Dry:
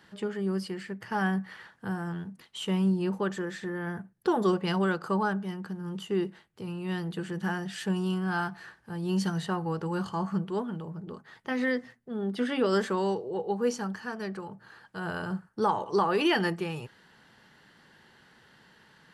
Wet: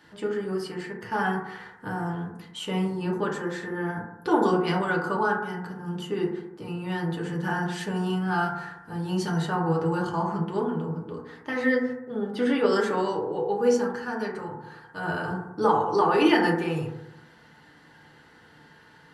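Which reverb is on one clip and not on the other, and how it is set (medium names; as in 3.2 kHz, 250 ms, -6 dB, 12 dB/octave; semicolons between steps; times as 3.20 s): FDN reverb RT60 0.9 s, low-frequency decay 1.05×, high-frequency decay 0.25×, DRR -2.5 dB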